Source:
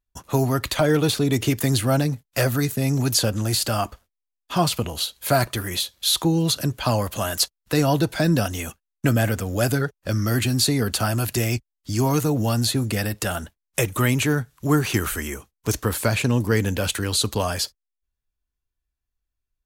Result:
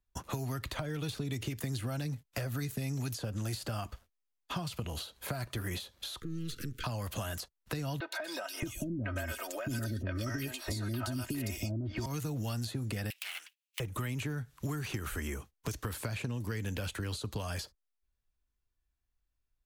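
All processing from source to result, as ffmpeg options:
-filter_complex "[0:a]asettb=1/sr,asplit=3[a][b][c];[a]atrim=end=6.204[d];[b]atrim=start=6.2:end=6.84,asetpts=PTS-STARTPTS,afade=t=in:d=0.004:c=qsin,afade=t=out:st=0.636:d=0.004:c=qsin,aeval=exprs='if(lt(val(0),0),0.251*val(0),val(0))':c=same,acompressor=threshold=-32dB:ratio=4:attack=3.2:release=140:knee=1:detection=peak,asuperstop=centerf=780:order=12:qfactor=1[e];[c]atrim=start=6.836[f];[d][e]acrossfade=d=0.004:c1=hsin:c2=qsin[g];[g][f]acrossfade=d=0.004:c1=qsin:c2=hsin,asettb=1/sr,asplit=3[h][i][j];[h]atrim=end=8.004[k];[i]atrim=start=8:end=12.06,asetpts=PTS-STARTPTS,afade=t=in:d=0.004:c=qsin,afade=t=out:st=4.056:d=0.004:c=qsin,aecho=1:1:3.2:0.73,atrim=end_sample=179046,acontrast=79,acrossover=split=480|2600[l][m][n];[n]adelay=120[o];[l]adelay=620[p];[p][m][o]amix=inputs=3:normalize=0,atrim=end_sample=179046[q];[j]atrim=start=12.056[r];[k][q]acrossfade=d=0.004:c1=hsin:c2=qsin[s];[s][r]acrossfade=d=0.004:c1=qsin:c2=hsin,asettb=1/sr,asplit=3[t][u][v];[t]atrim=end=13.104[w];[u]atrim=start=13.1:end=13.8,asetpts=PTS-STARTPTS,afade=t=in:d=0.004:c=qsin,afade=t=out:st=0.696:d=0.004:c=qsin,aeval=exprs='abs(val(0))':c=same,highpass=f=2.7k:t=q:w=3.9,highshelf=f=7.7k:g=6[x];[v]atrim=start=13.796[y];[w][x]acrossfade=d=0.004:c1=hsin:c2=qsin[z];[z][y]acrossfade=d=0.004:c1=qsin:c2=hsin,acompressor=threshold=-25dB:ratio=6,highshelf=f=4.8k:g=-5.5,acrossover=split=160|1700[aa][ab][ac];[aa]acompressor=threshold=-37dB:ratio=4[ad];[ab]acompressor=threshold=-41dB:ratio=4[ae];[ac]acompressor=threshold=-43dB:ratio=4[af];[ad][ae][af]amix=inputs=3:normalize=0"

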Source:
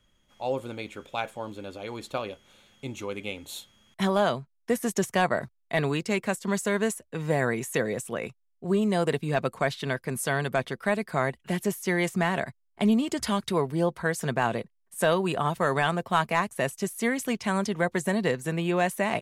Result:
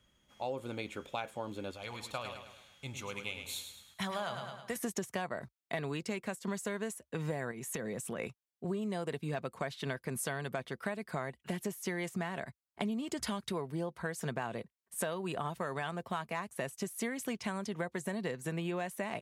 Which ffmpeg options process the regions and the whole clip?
-filter_complex "[0:a]asettb=1/sr,asplit=3[a][b][c];[a]atrim=end=1.714[d];[b]atrim=start=1.71:end=4.76,asetpts=PTS-STARTPTS,afade=t=in:d=0.004:c=qsin,afade=t=out:st=3.046:d=0.004:c=qsin,equalizer=f=330:w=0.83:g=-13.5,aecho=1:1:106|212|318|424|530:0.398|0.183|0.0842|0.0388|0.0178,atrim=end_sample=134505[e];[c]atrim=start=4.756[f];[d][e]acrossfade=d=0.004:c1=hsin:c2=qsin[g];[g][f]acrossfade=d=0.004:c1=qsin:c2=hsin,asettb=1/sr,asplit=3[h][i][j];[h]atrim=end=7.514[k];[i]atrim=start=7.51:end=8.19,asetpts=PTS-STARTPTS,afade=t=in:d=0.004:c=qsin,afade=t=out:st=0.676:d=0.004:c=qsin,equalizer=f=180:w=1.9:g=5.5,acompressor=threshold=-33dB:ratio=4:attack=3.2:release=140:knee=1:detection=peak[l];[j]atrim=start=8.186[m];[k][l]acrossfade=d=0.004:c1=hsin:c2=qsin[n];[n][m]acrossfade=d=0.004:c1=qsin:c2=hsin,highpass=41,acompressor=threshold=-32dB:ratio=6,volume=-1.5dB"

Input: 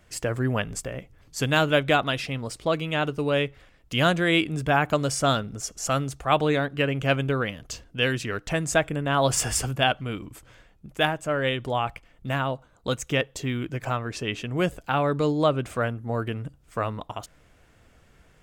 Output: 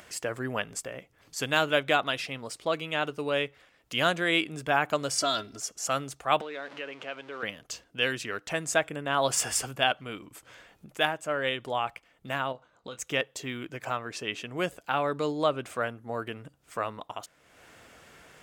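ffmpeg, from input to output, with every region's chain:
-filter_complex "[0:a]asettb=1/sr,asplit=3[a][b][c];[a]atrim=end=5.184[d];[b]atrim=start=5.18:end=5.6,asetpts=PTS-STARTPTS,afade=t=in:d=0.004:c=qsin,afade=t=out:st=0.416:d=0.004:c=qsin,equalizer=f=4.6k:w=2.1:g=13.5,acompressor=threshold=-21dB:ratio=6:attack=3.2:release=140:knee=1:detection=peak,aecho=1:1:3:0.77,atrim=end_sample=18522[e];[c]atrim=start=5.596[f];[d][e]acrossfade=d=0.004:c1=hsin:c2=qsin[g];[g][f]acrossfade=d=0.004:c1=qsin:c2=hsin,asettb=1/sr,asplit=3[h][i][j];[h]atrim=end=6.414[k];[i]atrim=start=6.41:end=7.43,asetpts=PTS-STARTPTS,afade=t=in:d=0.004:c=qsin,afade=t=out:st=1.016:d=0.004:c=qsin,aeval=exprs='val(0)+0.5*0.0251*sgn(val(0))':c=same,acompressor=threshold=-28dB:ratio=5:attack=3.2:release=140:knee=1:detection=peak,highpass=340,lowpass=4.1k[l];[j]atrim=start=7.426[m];[k][l]acrossfade=d=0.004:c1=hsin:c2=qsin[n];[n][m]acrossfade=d=0.004:c1=qsin:c2=hsin,asettb=1/sr,asplit=3[o][p][q];[o]atrim=end=12.524[r];[p]atrim=start=12.52:end=12.99,asetpts=PTS-STARTPTS,afade=t=in:d=0.004:c=qsin,afade=t=out:st=0.466:d=0.004:c=qsin,lowpass=5.7k,asplit=2[s][t];[t]adelay=24,volume=-11dB[u];[s][u]amix=inputs=2:normalize=0,atrim=end_sample=20727,acompressor=threshold=-31dB:ratio=6:attack=3.2:release=140:knee=1:detection=peak[v];[q]atrim=start=12.986[w];[r][v]acrossfade=d=0.004:c1=hsin:c2=qsin[x];[x][w]acrossfade=d=0.004:c1=qsin:c2=hsin,highpass=f=450:p=1,acompressor=mode=upward:threshold=-40dB:ratio=2.5,volume=-2dB"

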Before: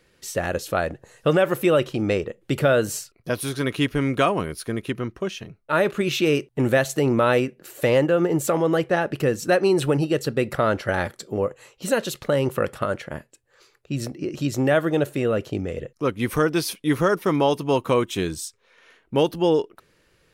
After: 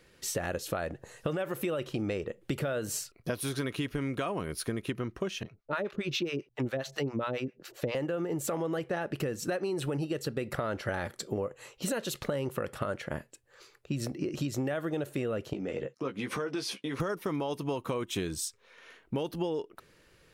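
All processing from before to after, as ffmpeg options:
-filter_complex "[0:a]asettb=1/sr,asplit=3[a][b][c];[a]atrim=end=5.434[d];[b]atrim=start=5.43:end=7.95,asetpts=PTS-STARTPTS,afade=t=in:d=0.004:c=qsin,afade=t=out:st=2.516:d=0.004:c=qsin,highshelf=f=6.8k:t=q:w=1.5:g=-8.5,acrossover=split=640[e][f];[e]aeval=exprs='val(0)*(1-1/2+1/2*cos(2*PI*7.4*n/s))':c=same[g];[f]aeval=exprs='val(0)*(1-1/2-1/2*cos(2*PI*7.4*n/s))':c=same[h];[g][h]amix=inputs=2:normalize=0[i];[c]atrim=start=7.946[j];[d][i]acrossfade=d=0.004:c1=hsin:c2=qsin[k];[k][j]acrossfade=d=0.004:c1=qsin:c2=hsin,asettb=1/sr,asplit=3[l][m][n];[l]atrim=end=15.534[o];[m]atrim=start=15.53:end=17,asetpts=PTS-STARTPTS,afade=t=in:d=0.004:c=qsin,afade=t=out:st=1.466:d=0.004:c=qsin,acompressor=threshold=-28dB:ratio=6:attack=3.2:release=140:knee=1:detection=peak,highpass=180,lowpass=6.3k,asplit=2[p][q];[q]adelay=15,volume=-6dB[r];[p][r]amix=inputs=2:normalize=0,atrim=end_sample=64827[s];[n]atrim=start=16.996[t];[o][s]acrossfade=d=0.004:c1=hsin:c2=qsin[u];[u][t]acrossfade=d=0.004:c1=qsin:c2=hsin,alimiter=limit=-13dB:level=0:latency=1:release=37,acompressor=threshold=-29dB:ratio=10"

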